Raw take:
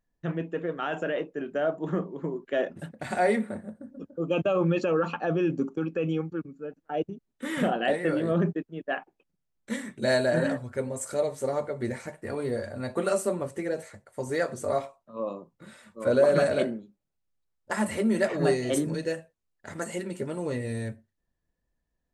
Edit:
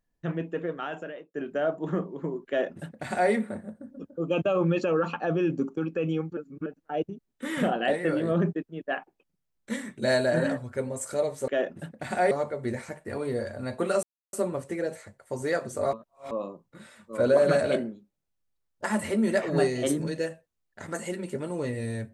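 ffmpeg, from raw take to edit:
ffmpeg -i in.wav -filter_complex "[0:a]asplit=9[link_01][link_02][link_03][link_04][link_05][link_06][link_07][link_08][link_09];[link_01]atrim=end=1.34,asetpts=PTS-STARTPTS,afade=type=out:start_time=0.64:duration=0.7[link_10];[link_02]atrim=start=1.34:end=6.372,asetpts=PTS-STARTPTS,afade=type=in:duration=0.004:curve=hsin[link_11];[link_03]atrim=start=6.368:end=6.662,asetpts=PTS-STARTPTS,areverse[link_12];[link_04]atrim=start=6.658:end=11.482[link_13];[link_05]atrim=start=2.478:end=3.312[link_14];[link_06]atrim=start=11.478:end=13.2,asetpts=PTS-STARTPTS,afade=type=out:start_time=1.718:duration=0.004:curve=hsin,apad=pad_dur=0.3[link_15];[link_07]atrim=start=13.2:end=14.802,asetpts=PTS-STARTPTS,afade=type=in:duration=0.004:curve=hsin[link_16];[link_08]atrim=start=14.798:end=15.182,asetpts=PTS-STARTPTS,areverse[link_17];[link_09]atrim=start=15.178[link_18];[link_10][link_11]concat=n=2:v=0:a=1[link_19];[link_19][link_12]acrossfade=duration=0.004:curve1=hsin:curve2=hsin[link_20];[link_20][link_13]acrossfade=duration=0.004:curve1=hsin:curve2=hsin[link_21];[link_21][link_14]acrossfade=duration=0.004:curve1=hsin:curve2=hsin[link_22];[link_15][link_16]concat=n=2:v=0:a=1[link_23];[link_22][link_23]acrossfade=duration=0.004:curve1=hsin:curve2=hsin[link_24];[link_24][link_17]acrossfade=duration=0.004:curve1=hsin:curve2=hsin[link_25];[link_25][link_18]acrossfade=duration=0.004:curve1=hsin:curve2=hsin" out.wav

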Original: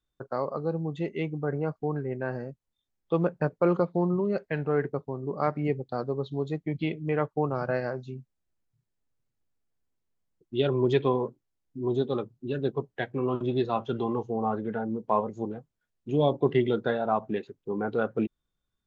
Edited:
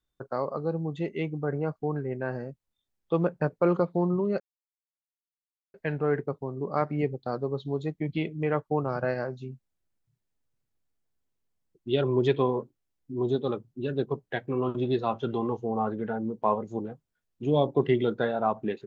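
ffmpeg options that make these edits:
ffmpeg -i in.wav -filter_complex "[0:a]asplit=2[link_01][link_02];[link_01]atrim=end=4.4,asetpts=PTS-STARTPTS,afade=type=out:start_time=4.396:duration=0.004:curve=hsin,apad=pad_dur=1.34[link_03];[link_02]atrim=start=4.4,asetpts=PTS-STARTPTS,afade=type=in:duration=0.004:curve=hsin[link_04];[link_03][link_04]concat=n=2:v=0:a=1" out.wav

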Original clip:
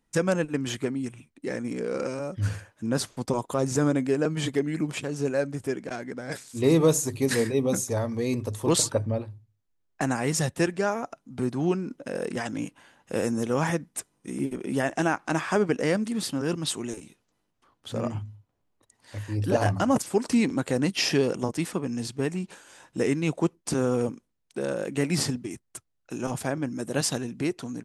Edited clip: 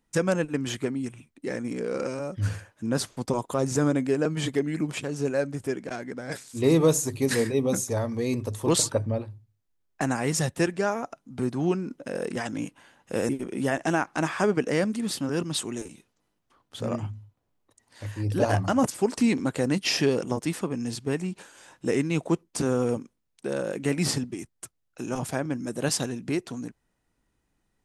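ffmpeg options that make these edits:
ffmpeg -i in.wav -filter_complex "[0:a]asplit=2[link_01][link_02];[link_01]atrim=end=13.292[link_03];[link_02]atrim=start=14.408[link_04];[link_03][link_04]acrossfade=duration=0.004:curve1=hsin:curve2=hsin" out.wav

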